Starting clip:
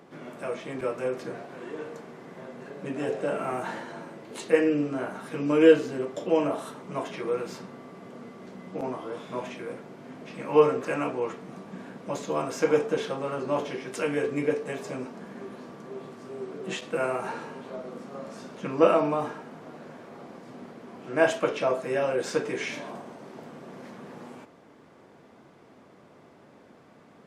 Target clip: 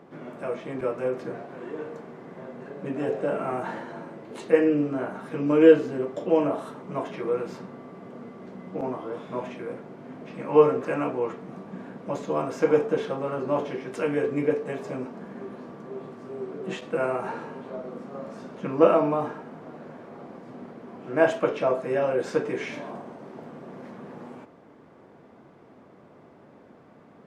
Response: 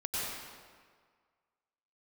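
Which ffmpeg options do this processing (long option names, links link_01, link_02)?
-af "highshelf=frequency=2600:gain=-11.5,volume=2.5dB"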